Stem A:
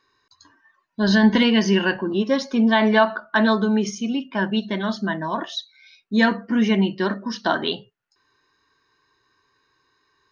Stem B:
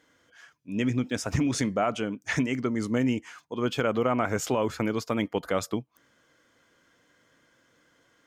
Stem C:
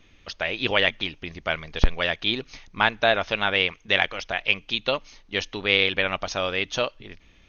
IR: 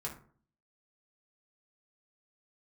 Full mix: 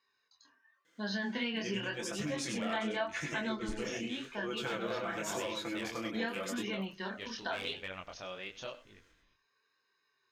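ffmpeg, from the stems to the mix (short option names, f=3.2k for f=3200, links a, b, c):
-filter_complex "[0:a]highpass=220,flanger=delay=1:depth=7.7:regen=49:speed=0.43:shape=sinusoidal,equalizer=f=315:t=o:w=0.33:g=-12,equalizer=f=1k:t=o:w=0.33:g=-5,equalizer=f=2.5k:t=o:w=0.33:g=6,volume=-3.5dB[a];[1:a]highpass=f=380:p=1,equalizer=f=820:t=o:w=1.4:g=-6,aecho=1:1:5.9:0.97,adelay=850,volume=-3dB,asplit=2[b][c];[c]volume=-5dB[d];[2:a]asoftclip=type=hard:threshold=-10dB,adelay=1850,volume=-14.5dB,asplit=2[e][f];[f]volume=-16dB[g];[d][g]amix=inputs=2:normalize=0,aecho=0:1:96:1[h];[a][b][e][h]amix=inputs=4:normalize=0,flanger=delay=19.5:depth=7.9:speed=0.9,acompressor=threshold=-37dB:ratio=2"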